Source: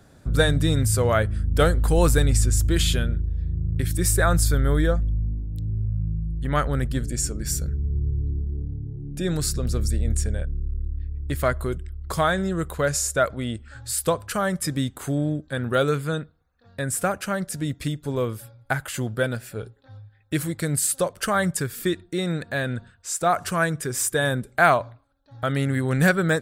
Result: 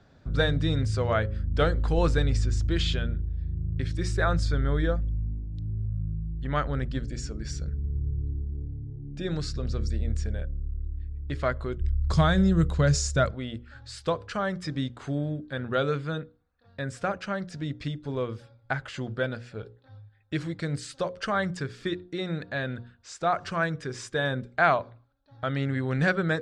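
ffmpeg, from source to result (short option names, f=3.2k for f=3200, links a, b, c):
-filter_complex "[0:a]asettb=1/sr,asplit=3[a][b][c];[a]atrim=end=11.804[d];[b]atrim=start=11.8:end=13.31,asetpts=PTS-STARTPTS,afade=t=in:d=0.004:c=qsin,afade=t=out:st=1.506:d=0.004:c=qsin,bass=f=250:g=14,treble=f=4k:g=11[e];[c]atrim=start=13.306[f];[d][e]acrossfade=d=0.004:c1=hsin:c2=qsin[g];[g][f]acrossfade=d=0.004:c1=qsin:c2=hsin,lowpass=f=5.3k:w=0.5412,lowpass=f=5.3k:w=1.3066,bandreject=f=60:t=h:w=6,bandreject=f=120:t=h:w=6,bandreject=f=180:t=h:w=6,bandreject=f=240:t=h:w=6,bandreject=f=300:t=h:w=6,bandreject=f=360:t=h:w=6,bandreject=f=420:t=h:w=6,bandreject=f=480:t=h:w=6,bandreject=f=540:t=h:w=6,volume=-4.5dB"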